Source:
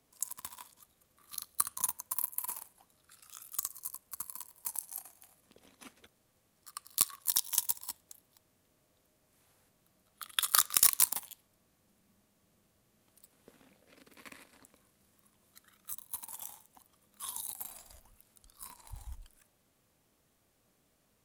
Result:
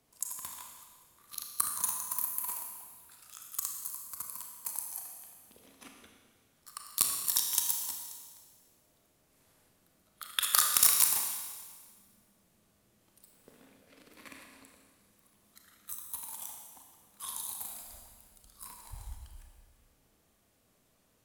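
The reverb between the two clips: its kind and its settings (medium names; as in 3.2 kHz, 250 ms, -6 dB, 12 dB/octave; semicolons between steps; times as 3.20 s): Schroeder reverb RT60 1.6 s, combs from 26 ms, DRR 2 dB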